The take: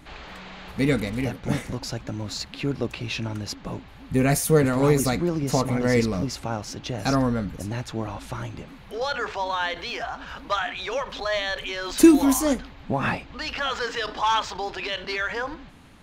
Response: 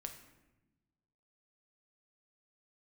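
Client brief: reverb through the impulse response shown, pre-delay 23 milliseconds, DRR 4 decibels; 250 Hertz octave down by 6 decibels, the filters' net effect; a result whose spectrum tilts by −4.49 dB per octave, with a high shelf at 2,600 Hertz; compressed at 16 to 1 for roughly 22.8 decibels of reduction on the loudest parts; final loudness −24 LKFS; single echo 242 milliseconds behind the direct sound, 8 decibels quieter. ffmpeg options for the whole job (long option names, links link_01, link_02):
-filter_complex "[0:a]equalizer=frequency=250:width_type=o:gain=-8,highshelf=frequency=2600:gain=-5.5,acompressor=threshold=-36dB:ratio=16,aecho=1:1:242:0.398,asplit=2[link_01][link_02];[1:a]atrim=start_sample=2205,adelay=23[link_03];[link_02][link_03]afir=irnorm=-1:irlink=0,volume=-0.5dB[link_04];[link_01][link_04]amix=inputs=2:normalize=0,volume=14.5dB"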